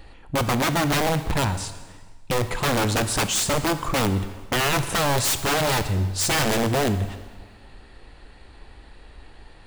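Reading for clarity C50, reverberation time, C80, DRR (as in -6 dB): 11.5 dB, 1.4 s, 13.0 dB, 9.5 dB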